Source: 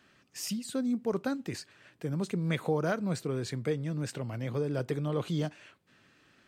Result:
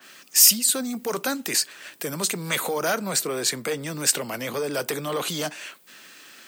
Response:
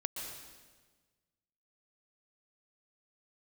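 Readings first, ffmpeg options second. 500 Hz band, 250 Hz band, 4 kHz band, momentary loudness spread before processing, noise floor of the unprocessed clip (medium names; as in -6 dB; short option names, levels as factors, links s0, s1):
+5.0 dB, +0.5 dB, +18.5 dB, 8 LU, -66 dBFS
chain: -filter_complex "[0:a]apsyclip=33.5,highpass=f=150:w=0.5412,highpass=f=150:w=1.3066,aemphasis=mode=production:type=riaa,acrossover=split=470|3000[s0][s1][s2];[s0]acompressor=threshold=0.178:ratio=1.5[s3];[s3][s1][s2]amix=inputs=3:normalize=0,adynamicequalizer=threshold=0.112:dfrequency=2300:dqfactor=0.7:tfrequency=2300:tqfactor=0.7:attack=5:release=100:ratio=0.375:range=2.5:mode=cutabove:tftype=highshelf,volume=0.141"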